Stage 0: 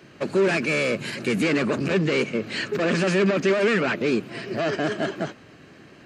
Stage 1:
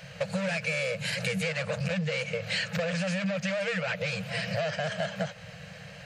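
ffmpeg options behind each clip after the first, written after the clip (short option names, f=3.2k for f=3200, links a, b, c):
-af "afftfilt=real='re*(1-between(b*sr/4096,200,460))':imag='im*(1-between(b*sr/4096,200,460))':win_size=4096:overlap=0.75,equalizer=f=1.1k:w=1.9:g=-9,acompressor=threshold=-34dB:ratio=10,volume=7dB"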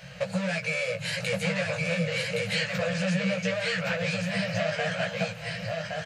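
-af "flanger=delay=16:depth=2.7:speed=0.35,aecho=1:1:1118:0.708,volume=3.5dB"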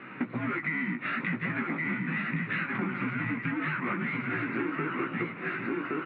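-af "highpass=160,highpass=f=240:t=q:w=0.5412,highpass=f=240:t=q:w=1.307,lowpass=f=2.7k:t=q:w=0.5176,lowpass=f=2.7k:t=q:w=0.7071,lowpass=f=2.7k:t=q:w=1.932,afreqshift=-310,acompressor=threshold=-33dB:ratio=6,volume=5dB"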